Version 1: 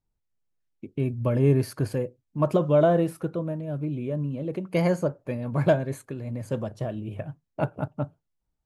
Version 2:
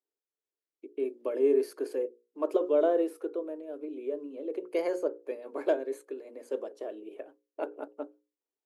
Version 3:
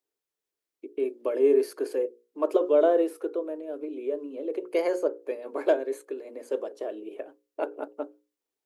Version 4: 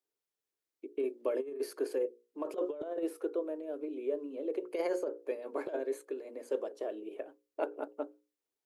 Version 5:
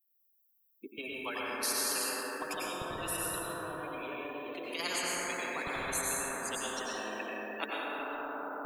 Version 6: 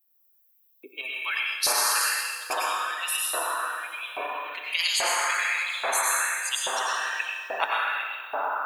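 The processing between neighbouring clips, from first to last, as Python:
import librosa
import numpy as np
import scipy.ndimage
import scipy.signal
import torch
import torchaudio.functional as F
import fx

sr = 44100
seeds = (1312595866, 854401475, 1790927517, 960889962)

y1 = scipy.signal.sosfilt(scipy.signal.cheby1(5, 1.0, 280.0, 'highpass', fs=sr, output='sos'), x)
y1 = fx.peak_eq(y1, sr, hz=420.0, db=12.5, octaves=0.58)
y1 = fx.hum_notches(y1, sr, base_hz=60, count=9)
y1 = F.gain(torch.from_numpy(y1), -8.5).numpy()
y2 = fx.dynamic_eq(y1, sr, hz=170.0, q=0.87, threshold_db=-44.0, ratio=4.0, max_db=-5)
y2 = F.gain(torch.from_numpy(y2), 5.0).numpy()
y3 = fx.over_compress(y2, sr, threshold_db=-25.0, ratio=-0.5)
y3 = F.gain(torch.from_numpy(y3), -6.5).numpy()
y4 = fx.bin_expand(y3, sr, power=2.0)
y4 = fx.rev_plate(y4, sr, seeds[0], rt60_s=3.0, hf_ratio=0.35, predelay_ms=80, drr_db=-7.0)
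y4 = fx.spectral_comp(y4, sr, ratio=10.0)
y5 = fx.filter_lfo_highpass(y4, sr, shape='saw_up', hz=1.2, low_hz=630.0, high_hz=3900.0, q=2.3)
y5 = fx.echo_feedback(y5, sr, ms=128, feedback_pct=60, wet_db=-15)
y5 = fx.rev_plate(y5, sr, seeds[1], rt60_s=1.9, hf_ratio=0.8, predelay_ms=0, drr_db=9.0)
y5 = F.gain(torch.from_numpy(y5), 7.5).numpy()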